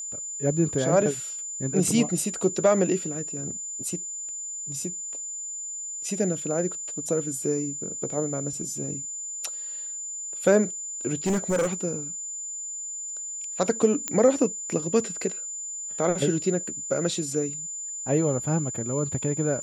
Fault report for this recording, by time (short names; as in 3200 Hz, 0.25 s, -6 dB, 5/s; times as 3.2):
tone 7100 Hz -32 dBFS
11.26–11.74 clipped -20 dBFS
14.08 pop -11 dBFS